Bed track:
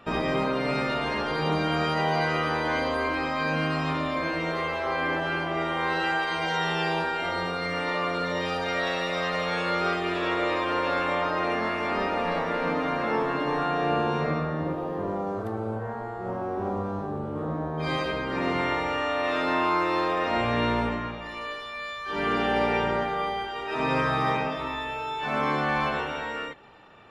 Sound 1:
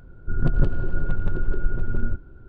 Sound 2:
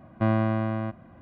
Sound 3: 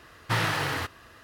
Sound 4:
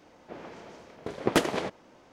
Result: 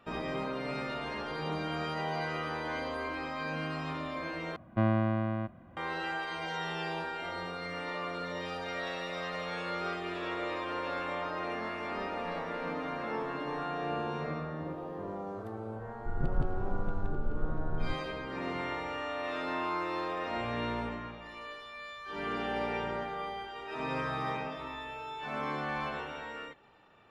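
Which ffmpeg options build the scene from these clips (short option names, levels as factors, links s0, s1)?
-filter_complex "[0:a]volume=0.335,asplit=2[s0][s1];[s0]atrim=end=4.564[s2];[2:a]atrim=end=1.21,asetpts=PTS-STARTPTS,volume=0.631[s3];[s1]atrim=start=5.766[s4];[1:a]atrim=end=2.48,asetpts=PTS-STARTPTS,volume=0.282,afade=t=in:d=0.004:c=hsin,afade=t=out:st=2.476:d=0.004:c=hsin,adelay=15780[s5];[s2][s3]acrossfade=d=0.004:c1=hsin:c2=hsin[s6];[s6][s4]acrossfade=d=0.004:c1=hsin:c2=hsin[s7];[s7][s5]amix=inputs=2:normalize=0"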